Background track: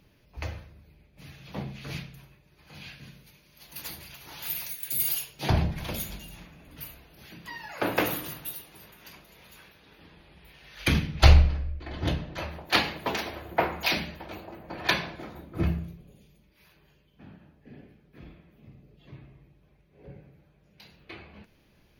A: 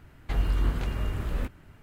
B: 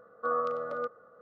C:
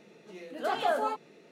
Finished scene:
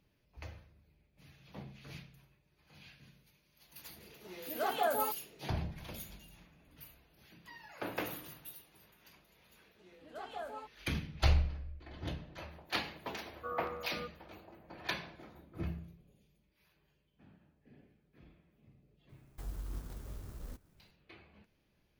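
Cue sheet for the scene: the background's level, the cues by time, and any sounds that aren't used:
background track −12.5 dB
0:03.96: mix in C −4 dB
0:09.51: mix in C −15.5 dB
0:13.20: mix in B −11 dB
0:19.09: mix in A −16.5 dB + converter with an unsteady clock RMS 0.11 ms

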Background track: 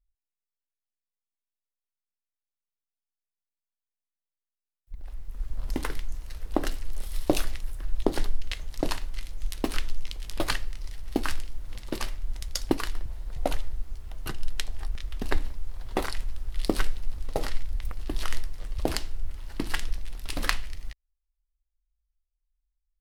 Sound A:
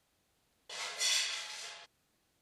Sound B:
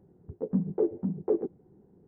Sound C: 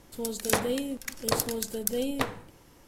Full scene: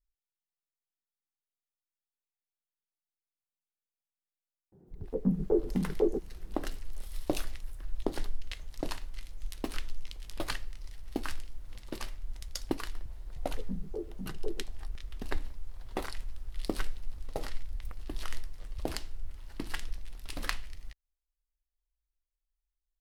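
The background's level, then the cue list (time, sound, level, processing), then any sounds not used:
background track −7.5 dB
0:04.72: mix in B −0.5 dB
0:13.16: mix in B −12 dB
not used: A, C

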